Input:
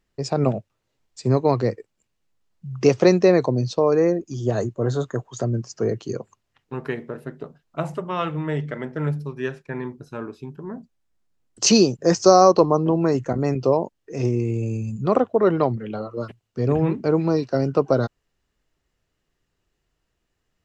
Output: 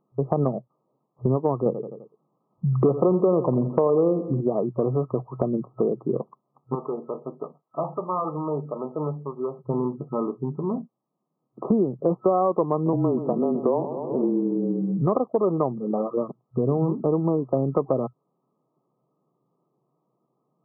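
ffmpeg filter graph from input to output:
ffmpeg -i in.wav -filter_complex "[0:a]asettb=1/sr,asplit=3[link_01][link_02][link_03];[link_01]atrim=end=1.664[link_04];[link_02]atrim=start=1.66:end=4.41,asetpts=PTS-STARTPTS,afade=type=in:duration=0.004:curve=qsin,afade=type=out:start_time=2.746:duration=0.004:curve=qsin,acontrast=80,aecho=1:1:85|170|255|340:0.211|0.0909|0.0391|0.0168,atrim=end_sample=121275[link_05];[link_03]atrim=start=4.406[link_06];[link_04][link_05]acrossfade=duration=0.004:curve1=hsin:curve2=qsin[link_07];[link_07][link_06]acrossfade=duration=0.004:curve1=qsin:curve2=hsin,asettb=1/sr,asplit=3[link_08][link_09][link_10];[link_08]atrim=end=6.754[link_11];[link_09]atrim=start=6.75:end=9.59,asetpts=PTS-STARTPTS,afade=type=in:duration=0.004:curve=qsin,afade=type=out:start_time=2.836:duration=0.004:curve=qsin,highpass=frequency=730:poles=1,asoftclip=type=hard:threshold=-27dB[link_12];[link_10]atrim=start=9.586[link_13];[link_11][link_12]acrossfade=duration=0.004:curve1=hsin:curve2=qsin[link_14];[link_14][link_13]acrossfade=duration=0.004:curve1=qsin:curve2=hsin,asettb=1/sr,asplit=3[link_15][link_16][link_17];[link_15]atrim=end=12.934[link_18];[link_16]atrim=start=12.93:end=15.02,asetpts=PTS-STARTPTS,afade=type=in:duration=0.004:curve=qsin,afade=type=out:start_time=2.086:duration=0.004:curve=qsin,aecho=1:1:127|254|381|508|635|762:0.2|0.118|0.0695|0.041|0.0242|0.0143,atrim=end_sample=92169,afreqshift=-26[link_19];[link_17]atrim=start=15.016[link_20];[link_18][link_19]acrossfade=duration=0.004:curve1=hsin:curve2=qsin[link_21];[link_21][link_20]acrossfade=duration=0.004:curve1=qsin:curve2=hsin,afftfilt=real='re*between(b*sr/4096,120,1300)':imag='im*between(b*sr/4096,120,1300)':win_size=4096:overlap=0.75,acompressor=threshold=-28dB:ratio=4,volume=7.5dB" out.wav

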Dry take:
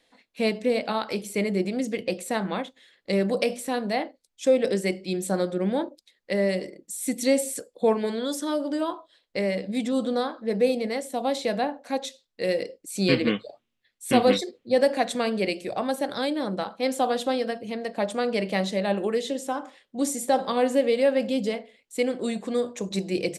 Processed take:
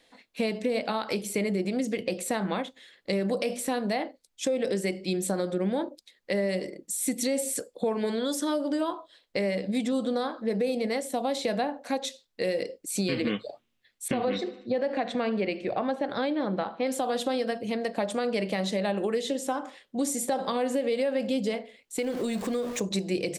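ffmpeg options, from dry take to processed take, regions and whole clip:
ffmpeg -i in.wav -filter_complex "[0:a]asettb=1/sr,asplit=3[link_01][link_02][link_03];[link_01]atrim=end=14.084[link_04];[link_02]atrim=start=14.08:end=16.87,asetpts=PTS-STARTPTS,afade=type=in:duration=0.004:curve=qsin,afade=type=out:start_time=2.786:duration=0.004:curve=qsin,lowpass=2900,aecho=1:1:75|150|225|300:0.075|0.045|0.027|0.0162,atrim=end_sample=123039[link_05];[link_03]atrim=start=16.866[link_06];[link_04][link_05]acrossfade=duration=0.004:curve1=hsin:curve2=qsin[link_07];[link_07][link_06]acrossfade=duration=0.004:curve1=qsin:curve2=hsin,asettb=1/sr,asplit=3[link_08][link_09][link_10];[link_08]atrim=end=21.984[link_11];[link_09]atrim=start=21.98:end=22.8,asetpts=PTS-STARTPTS,afade=type=in:duration=0.004:curve=qsin,afade=type=out:start_time=0.816:duration=0.004:curve=qsin,aeval=exprs='val(0)+0.5*0.0126*sgn(val(0))':channel_layout=same,acompressor=threshold=-28dB:ratio=3:attack=3.2:release=140:knee=1:detection=peak[link_12];[link_10]atrim=start=22.796[link_13];[link_11][link_12]acrossfade=duration=0.004:curve1=hsin:curve2=qsin[link_14];[link_14][link_13]acrossfade=duration=0.004:curve1=qsin:curve2=hsin,alimiter=limit=-16.5dB:level=0:latency=1:release=57,acompressor=threshold=-30dB:ratio=2.5,volume=3.5dB" out.wav

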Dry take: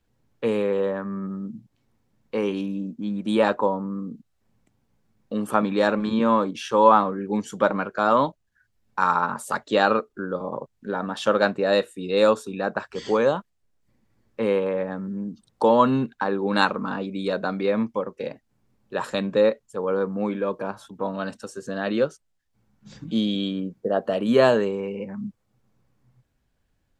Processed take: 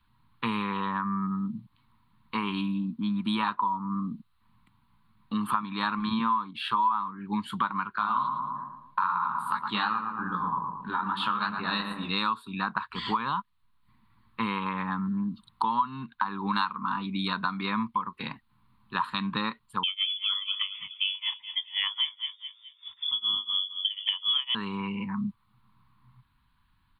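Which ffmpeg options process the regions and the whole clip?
ffmpeg -i in.wav -filter_complex "[0:a]asettb=1/sr,asplit=3[link_01][link_02][link_03];[link_01]atrim=end=7.984[link_04];[link_02]atrim=start=7.98:end=12.11,asetpts=PTS-STARTPTS,afade=type=in:duration=0.004:curve=qsin,afade=type=out:start_time=4.126:duration=0.004:curve=qsin,flanger=delay=17:depth=7.3:speed=2.5,asplit=2[link_05][link_06];[link_06]adelay=113,lowpass=frequency=1500:poles=1,volume=-6dB,asplit=2[link_07][link_08];[link_08]adelay=113,lowpass=frequency=1500:poles=1,volume=0.52,asplit=2[link_09][link_10];[link_10]adelay=113,lowpass=frequency=1500:poles=1,volume=0.52,asplit=2[link_11][link_12];[link_12]adelay=113,lowpass=frequency=1500:poles=1,volume=0.52,asplit=2[link_13][link_14];[link_14]adelay=113,lowpass=frequency=1500:poles=1,volume=0.52,asplit=2[link_15][link_16];[link_16]adelay=113,lowpass=frequency=1500:poles=1,volume=0.52[link_17];[link_05][link_07][link_09][link_11][link_13][link_15][link_17]amix=inputs=7:normalize=0,atrim=end_sample=182133[link_18];[link_03]atrim=start=12.106[link_19];[link_04][link_18]acrossfade=duration=0.004:curve1=hsin:curve2=qsin[link_20];[link_20][link_19]acrossfade=duration=0.004:curve1=qsin:curve2=hsin,asettb=1/sr,asplit=3[link_21][link_22][link_23];[link_21]atrim=end=19.834[link_24];[link_22]atrim=start=19.83:end=24.55,asetpts=PTS-STARTPTS,afade=type=in:duration=0.004:curve=qsin,afade=type=out:start_time=4.716:duration=0.004:curve=qsin,tremolo=f=4:d=0.98,asplit=2[link_25][link_26];[link_26]adelay=212,lowpass=frequency=2500:poles=1,volume=-13.5dB,asplit=2[link_27][link_28];[link_28]adelay=212,lowpass=frequency=2500:poles=1,volume=0.38,asplit=2[link_29][link_30];[link_30]adelay=212,lowpass=frequency=2500:poles=1,volume=0.38,asplit=2[link_31][link_32];[link_32]adelay=212,lowpass=frequency=2500:poles=1,volume=0.38[link_33];[link_25][link_27][link_29][link_31][link_33]amix=inputs=5:normalize=0,atrim=end_sample=208152,lowpass=frequency=3100:width_type=q:width=0.5098,lowpass=frequency=3100:width_type=q:width=0.6013,lowpass=frequency=3100:width_type=q:width=0.9,lowpass=frequency=3100:width_type=q:width=2.563,afreqshift=-3600[link_34];[link_23]atrim=start=24.546[link_35];[link_24][link_34]acrossfade=duration=0.004:curve1=hsin:curve2=qsin[link_36];[link_36][link_35]acrossfade=duration=0.004:curve1=qsin:curve2=hsin,firequalizer=gain_entry='entry(210,0);entry(550,-27);entry(990,14);entry(1600,2);entry(4200,6);entry(5900,-29);entry(9100,-3)':delay=0.05:min_phase=1,acompressor=threshold=-28dB:ratio=6,volume=2.5dB" out.wav

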